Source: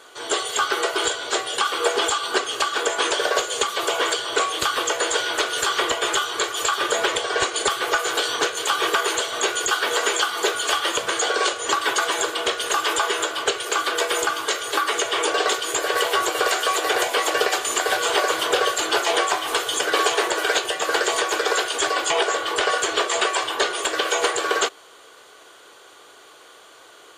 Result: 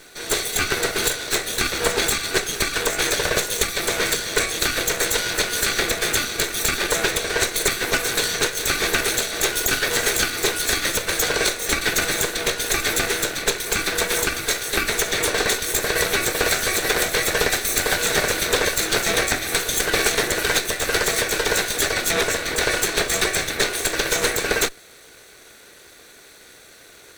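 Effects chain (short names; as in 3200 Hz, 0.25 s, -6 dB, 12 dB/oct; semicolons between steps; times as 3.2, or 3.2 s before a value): minimum comb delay 0.51 ms; high shelf 7300 Hz +7.5 dB; gain +1.5 dB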